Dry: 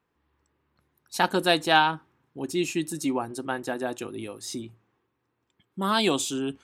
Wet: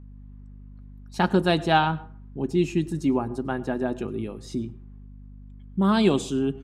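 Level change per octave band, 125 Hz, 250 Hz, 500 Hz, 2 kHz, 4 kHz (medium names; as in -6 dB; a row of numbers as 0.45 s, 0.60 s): +10.0 dB, +5.5 dB, +2.5 dB, -3.5 dB, -5.0 dB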